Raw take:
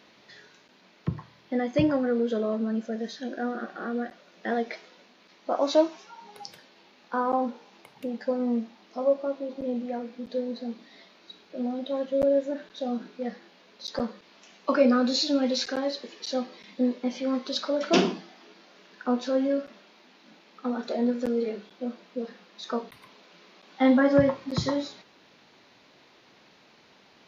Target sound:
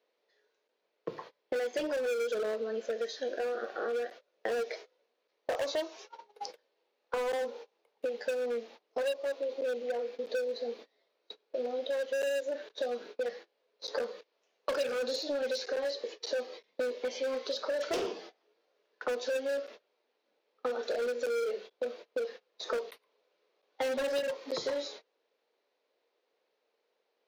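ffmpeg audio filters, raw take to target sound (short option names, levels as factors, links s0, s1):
-filter_complex "[0:a]agate=range=0.0447:threshold=0.00631:ratio=16:detection=peak,highpass=f=470:t=q:w=4.9,asplit=2[s0][s1];[s1]aeval=exprs='0.119*(abs(mod(val(0)/0.119+3,4)-2)-1)':c=same,volume=0.708[s2];[s0][s2]amix=inputs=2:normalize=0,acrossover=split=1700|4200[s3][s4][s5];[s3]acompressor=threshold=0.0282:ratio=4[s6];[s4]acompressor=threshold=0.00708:ratio=4[s7];[s5]acompressor=threshold=0.00794:ratio=4[s8];[s6][s7][s8]amix=inputs=3:normalize=0,volume=0.708"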